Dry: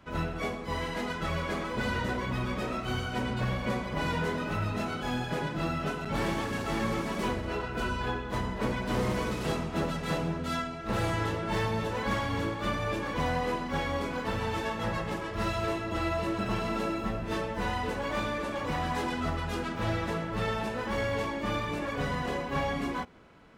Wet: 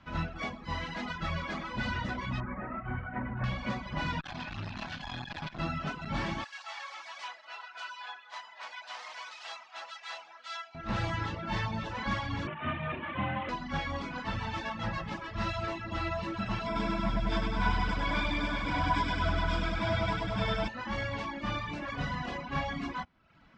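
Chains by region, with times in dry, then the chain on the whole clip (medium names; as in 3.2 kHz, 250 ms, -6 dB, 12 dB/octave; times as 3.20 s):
2.40–3.44 s: CVSD coder 32 kbps + Chebyshev low-pass 2 kHz, order 4
4.20–5.59 s: comb filter that takes the minimum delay 1.2 ms + peaking EQ 3.7 kHz +5 dB 0.99 oct + transformer saturation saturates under 480 Hz
6.44–10.75 s: ladder high-pass 600 Hz, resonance 40% + tilt shelf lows -8 dB, about 1.2 kHz
12.47–13.49 s: CVSD coder 16 kbps + frequency shift +44 Hz
16.66–20.68 s: rippled EQ curve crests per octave 1.7, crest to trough 12 dB + bit-crushed delay 99 ms, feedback 80%, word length 9-bit, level -3 dB
whole clip: low-pass 5.8 kHz 24 dB/octave; reverb removal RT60 0.68 s; peaking EQ 440 Hz -13.5 dB 0.62 oct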